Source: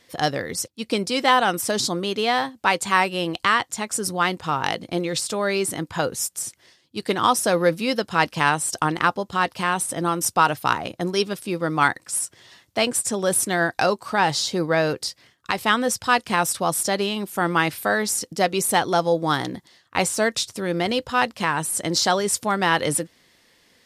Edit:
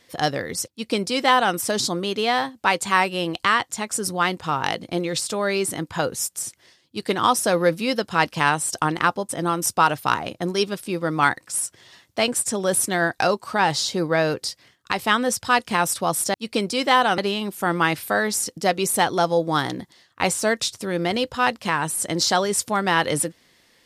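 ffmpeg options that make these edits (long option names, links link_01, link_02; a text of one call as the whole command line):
ffmpeg -i in.wav -filter_complex "[0:a]asplit=4[link_01][link_02][link_03][link_04];[link_01]atrim=end=9.292[link_05];[link_02]atrim=start=9.878:end=16.932[link_06];[link_03]atrim=start=0.708:end=1.552[link_07];[link_04]atrim=start=16.928[link_08];[link_05][link_06]acrossfade=duration=0.004:curve1=hsin:curve2=hsin[link_09];[link_09][link_07]acrossfade=duration=0.004:curve1=hsin:curve2=hsin[link_10];[link_10][link_08]acrossfade=duration=0.004:curve1=hsin:curve2=hsin" out.wav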